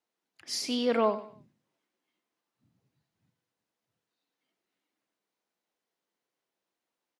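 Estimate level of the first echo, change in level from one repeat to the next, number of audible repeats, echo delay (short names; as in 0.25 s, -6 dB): -14.0 dB, -10.0 dB, 3, 96 ms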